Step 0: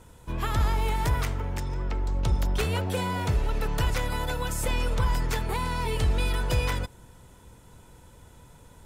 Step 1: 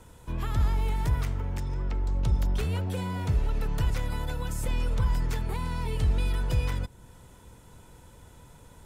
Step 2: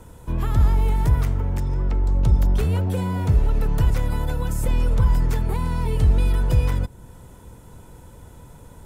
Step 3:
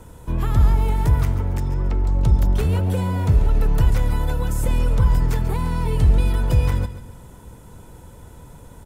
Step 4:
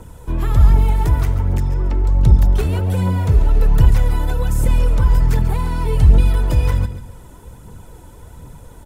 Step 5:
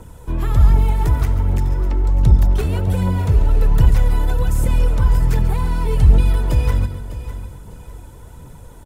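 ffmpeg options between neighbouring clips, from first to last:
ffmpeg -i in.wav -filter_complex "[0:a]acrossover=split=270[link_01][link_02];[link_02]acompressor=threshold=-50dB:ratio=1.5[link_03];[link_01][link_03]amix=inputs=2:normalize=0" out.wav
ffmpeg -i in.wav -af "equalizer=frequency=3600:width=0.37:gain=-7,volume=8dB" out.wav
ffmpeg -i in.wav -af "aecho=1:1:139|278|417|556:0.224|0.0873|0.0341|0.0133,volume=1.5dB" out.wav
ffmpeg -i in.wav -af "aphaser=in_gain=1:out_gain=1:delay=3.5:decay=0.38:speed=1.3:type=triangular,volume=1.5dB" out.wav
ffmpeg -i in.wav -af "aecho=1:1:602|1204|1806:0.211|0.0676|0.0216,volume=-1dB" out.wav

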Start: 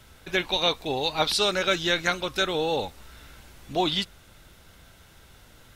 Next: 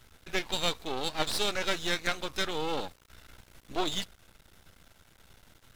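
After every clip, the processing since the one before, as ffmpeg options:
ffmpeg -i in.wav -af "aeval=exprs='max(val(0),0)':channel_layout=same,volume=-2.5dB" out.wav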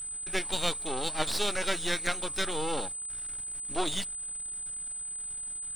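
ffmpeg -i in.wav -af "aeval=exprs='val(0)+0.0178*sin(2*PI*8100*n/s)':channel_layout=same" out.wav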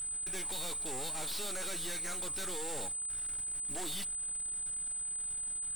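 ffmpeg -i in.wav -af "aeval=exprs='clip(val(0),-1,0.0188)':channel_layout=same" out.wav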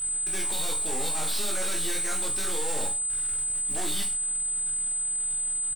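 ffmpeg -i in.wav -af "aecho=1:1:20|43|69.45|99.87|134.8:0.631|0.398|0.251|0.158|0.1,volume=5dB" out.wav

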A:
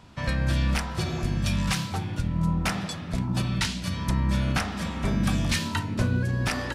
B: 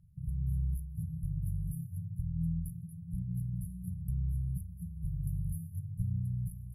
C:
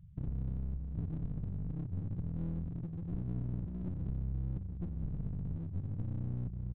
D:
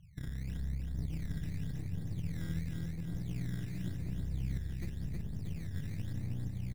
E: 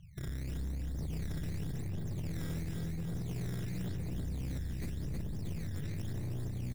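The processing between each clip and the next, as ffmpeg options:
ffmpeg -i in.wav -af "afftfilt=real='re*(1-between(b*sr/4096,190,10000))':imag='im*(1-between(b*sr/4096,190,10000))':win_size=4096:overlap=0.75,volume=-7.5dB" out.wav
ffmpeg -i in.wav -af "acompressor=threshold=-37dB:ratio=10,aresample=8000,aeval=exprs='clip(val(0),-1,0.00398)':channel_layout=same,aresample=44100,volume=6.5dB" out.wav
ffmpeg -i in.wav -af "acrusher=samples=14:mix=1:aa=0.000001:lfo=1:lforange=22.4:lforate=0.91,aecho=1:1:319|638|957|1276|1595|1914|2233|2552:0.631|0.353|0.198|0.111|0.0621|0.0347|0.0195|0.0109,volume=-3dB" out.wav
ffmpeg -i in.wav -filter_complex "[0:a]acrossover=split=3800[link_01][link_02];[link_01]asoftclip=type=hard:threshold=-37dB[link_03];[link_02]aphaser=in_gain=1:out_gain=1:delay=3.7:decay=0.65:speed=0.51:type=sinusoidal[link_04];[link_03][link_04]amix=inputs=2:normalize=0,volume=3.5dB" out.wav

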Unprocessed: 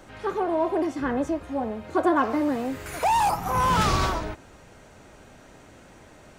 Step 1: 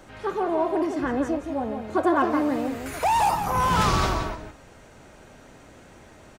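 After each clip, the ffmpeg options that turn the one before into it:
ffmpeg -i in.wav -filter_complex "[0:a]asplit=2[link_01][link_02];[link_02]adelay=169.1,volume=-7dB,highshelf=frequency=4000:gain=-3.8[link_03];[link_01][link_03]amix=inputs=2:normalize=0" out.wav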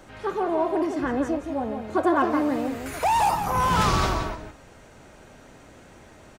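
ffmpeg -i in.wav -af anull out.wav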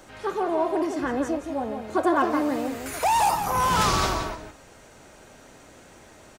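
ffmpeg -i in.wav -af "bass=frequency=250:gain=-4,treble=frequency=4000:gain=5" out.wav

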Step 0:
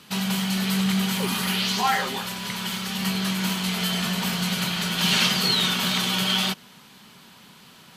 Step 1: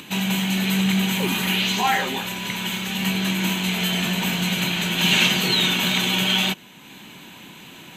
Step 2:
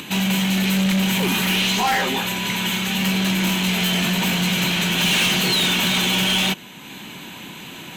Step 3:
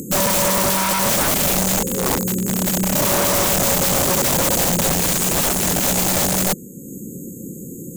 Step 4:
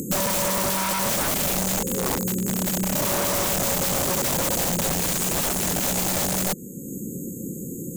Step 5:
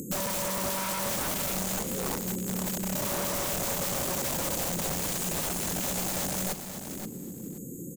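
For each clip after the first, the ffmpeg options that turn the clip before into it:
ffmpeg -i in.wav -af "acompressor=mode=upward:threshold=-38dB:ratio=2.5,superequalizer=6b=2.24:10b=0.562:12b=1.58:14b=0.316:16b=0.501,volume=2.5dB" out.wav
ffmpeg -i in.wav -af "asoftclip=type=tanh:threshold=-21.5dB,volume=6dB" out.wav
ffmpeg -i in.wav -af "afftfilt=real='re*(1-between(b*sr/4096,550,6400))':imag='im*(1-between(b*sr/4096,550,6400))':win_size=4096:overlap=0.75,aeval=exprs='(mod(11.2*val(0)+1,2)-1)/11.2':channel_layout=same,volume=7.5dB" out.wav
ffmpeg -i in.wav -af "acompressor=threshold=-22dB:ratio=6" out.wav
ffmpeg -i in.wav -af "aecho=1:1:528|1056|1584:0.355|0.0603|0.0103,volume=-7.5dB" out.wav

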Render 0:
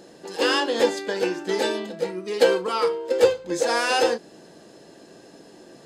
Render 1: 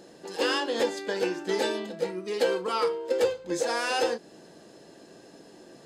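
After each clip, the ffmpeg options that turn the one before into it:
ffmpeg -i in.wav -af "alimiter=limit=-12.5dB:level=0:latency=1:release=268,volume=-3dB" out.wav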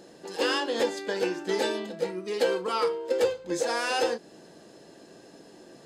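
ffmpeg -i in.wav -af anull out.wav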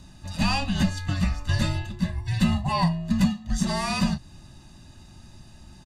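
ffmpeg -i in.wav -af "afreqshift=-300,aecho=1:1:1.1:0.93" out.wav

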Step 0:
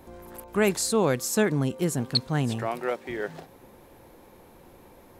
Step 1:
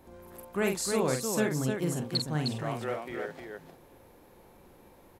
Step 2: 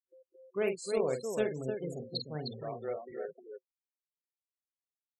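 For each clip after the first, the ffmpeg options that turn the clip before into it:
ffmpeg -i in.wav -af "aecho=1:1:46|307:0.531|0.562,volume=-6.5dB" out.wav
ffmpeg -i in.wav -af "aeval=exprs='0.2*(cos(1*acos(clip(val(0)/0.2,-1,1)))-cos(1*PI/2))+0.0282*(cos(3*acos(clip(val(0)/0.2,-1,1)))-cos(3*PI/2))':channel_layout=same,afftfilt=real='re*gte(hypot(re,im),0.0158)':imag='im*gte(hypot(re,im),0.0158)':win_size=1024:overlap=0.75,superequalizer=7b=2.82:8b=2.24:12b=1.78:13b=2,volume=-6dB" out.wav

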